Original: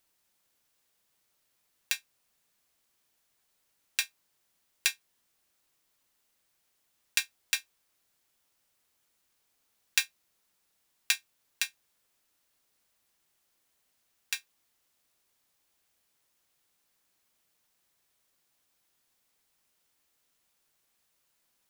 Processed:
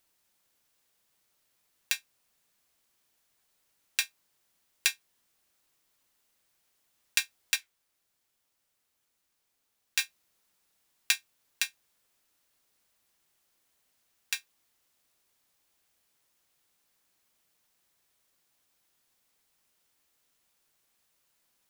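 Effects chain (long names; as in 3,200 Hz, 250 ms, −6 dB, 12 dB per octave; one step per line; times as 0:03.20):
0:07.56–0:09.99: flanger 1.3 Hz, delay 7.2 ms, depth 9.6 ms, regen −65%
level +1 dB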